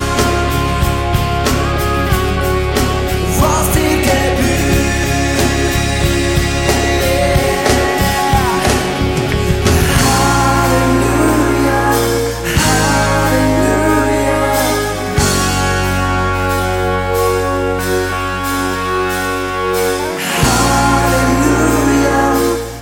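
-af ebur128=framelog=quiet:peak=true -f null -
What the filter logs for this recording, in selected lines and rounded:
Integrated loudness:
  I:         -13.5 LUFS
  Threshold: -23.4 LUFS
Loudness range:
  LRA:         3.0 LU
  Threshold: -33.5 LUFS
  LRA low:   -15.3 LUFS
  LRA high:  -12.3 LUFS
True peak:
  Peak:       -1.4 dBFS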